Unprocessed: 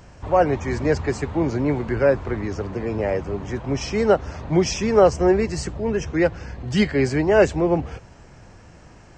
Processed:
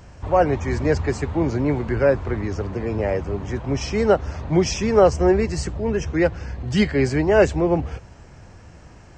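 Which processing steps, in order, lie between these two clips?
peaking EQ 72 Hz +5 dB 1.1 oct

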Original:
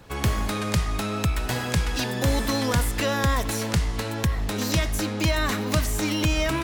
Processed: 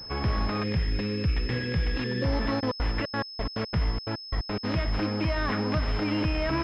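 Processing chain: 0.63–2.25 s: spectral selection erased 560–1600 Hz; peak limiter -17 dBFS, peak gain reduction 5.5 dB; 2.59–4.63 s: trance gate "xxx.x..x.x." 177 bpm -60 dB; class-D stage that switches slowly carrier 5.2 kHz

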